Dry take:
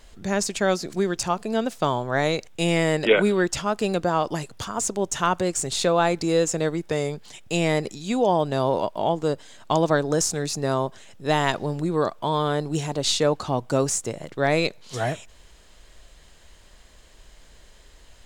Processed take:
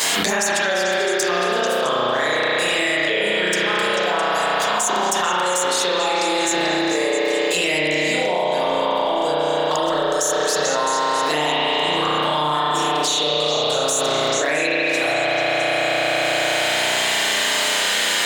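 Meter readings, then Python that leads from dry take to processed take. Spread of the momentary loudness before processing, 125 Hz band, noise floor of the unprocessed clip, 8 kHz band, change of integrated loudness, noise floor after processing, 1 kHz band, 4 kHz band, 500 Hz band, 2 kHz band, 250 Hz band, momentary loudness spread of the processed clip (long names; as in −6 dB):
7 LU, −7.5 dB, −51 dBFS, +7.0 dB, +5.5 dB, −21 dBFS, +7.0 dB, +12.0 dB, +3.5 dB, +11.0 dB, −1.0 dB, 2 LU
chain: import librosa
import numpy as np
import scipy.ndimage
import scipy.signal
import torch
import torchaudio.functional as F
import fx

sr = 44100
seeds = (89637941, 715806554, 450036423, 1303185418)

p1 = scipy.signal.sosfilt(scipy.signal.bessel(2, 280.0, 'highpass', norm='mag', fs=sr, output='sos'), x)
p2 = fx.tilt_eq(p1, sr, slope=3.0)
p3 = fx.rider(p2, sr, range_db=3, speed_s=2.0)
p4 = p2 + F.gain(torch.from_numpy(p3), 2.0).numpy()
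p5 = fx.env_flanger(p4, sr, rest_ms=11.3, full_db=-9.5)
p6 = p5 + fx.echo_stepped(p5, sr, ms=220, hz=3000.0, octaves=0.7, feedback_pct=70, wet_db=-6.5, dry=0)
p7 = fx.rev_spring(p6, sr, rt60_s=3.5, pass_ms=(33,), chirp_ms=45, drr_db=-9.5)
p8 = fx.env_flatten(p7, sr, amount_pct=100)
y = F.gain(torch.from_numpy(p8), -13.0).numpy()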